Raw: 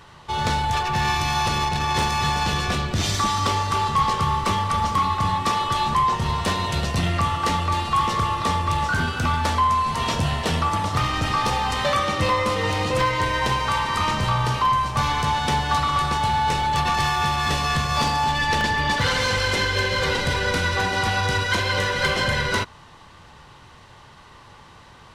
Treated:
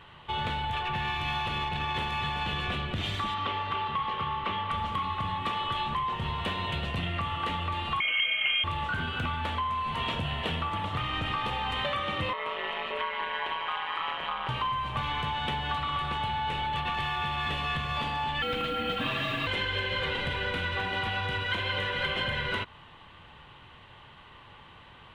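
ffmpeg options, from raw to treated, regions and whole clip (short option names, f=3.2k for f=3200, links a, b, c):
-filter_complex "[0:a]asettb=1/sr,asplit=3[a][b][c];[a]atrim=end=3.344[d];[b]atrim=start=3.34:end=4.71,asetpts=PTS-STARTPTS,afade=t=in:d=0.004:c=qsin,afade=t=out:st=1.366:d=0.004:c=qsin,lowpass=3.8k,lowshelf=f=150:g=-9[e];[c]atrim=start=4.706[f];[d][e]acrossfade=d=0.004:c1=hsin:c2=qsin[g];[g][f]acrossfade=d=0.004:c1=qsin:c2=hsin,asettb=1/sr,asplit=3[h][i][j];[h]atrim=end=8.004[k];[i]atrim=start=8:end=8.64,asetpts=PTS-STARTPTS,afade=t=in:d=0.004:c=qsin,afade=t=out:st=0.636:d=0.004:c=qsin,aecho=1:1:1.9:0.44,atrim=end_sample=28224,lowpass=f=2.8k:t=q:w=0.5098,lowpass=f=2.8k:t=q:w=0.6013,lowpass=f=2.8k:t=q:w=0.9,lowpass=f=2.8k:t=q:w=2.563,afreqshift=-3300[l];[j]atrim=start=8.636[m];[k][l]acrossfade=d=0.004:c1=hsin:c2=qsin[n];[n][m]acrossfade=d=0.004:c1=qsin:c2=hsin,asettb=1/sr,asplit=3[o][p][q];[o]atrim=end=12.334[r];[p]atrim=start=12.33:end=14.49,asetpts=PTS-STARTPTS,afade=t=in:d=0.004:c=qsin,afade=t=out:st=2.156:d=0.004:c=qsin,acrossover=split=430 3700:gain=0.1 1 0.2[s][t][u];[s][t][u]amix=inputs=3:normalize=0,aeval=exprs='val(0)*sin(2*PI*80*n/s)':c=same[v];[q]atrim=start=14.486[w];[r][v]acrossfade=d=0.004:c1=hsin:c2=qsin[x];[x][w]acrossfade=d=0.004:c1=qsin:c2=hsin,asettb=1/sr,asplit=3[y][z][aa];[y]atrim=end=18.424[ab];[z]atrim=start=18.42:end=19.47,asetpts=PTS-STARTPTS,afade=t=in:d=0.004:c=qsin,afade=t=out:st=1.046:d=0.004:c=qsin,highpass=80,acrusher=bits=4:mode=log:mix=0:aa=0.000001,afreqshift=-380[ac];[aa]atrim=start=19.466[ad];[ab][ac]acrossfade=d=0.004:c1=hsin:c2=qsin[ae];[ae][ad]acrossfade=d=0.004:c1=qsin:c2=hsin,acompressor=threshold=-23dB:ratio=6,highshelf=f=4.1k:t=q:w=3:g=-10,volume=-5.5dB"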